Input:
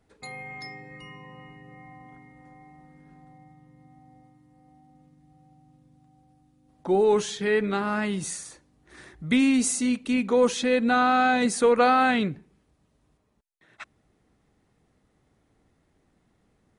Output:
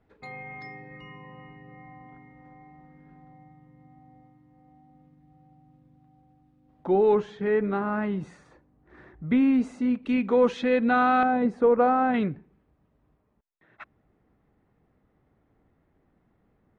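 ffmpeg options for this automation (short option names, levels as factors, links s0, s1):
-af "asetnsamples=n=441:p=0,asendcmd='7.15 lowpass f 1400;10.03 lowpass f 2400;11.23 lowpass f 1000;12.14 lowpass f 1900',lowpass=2500"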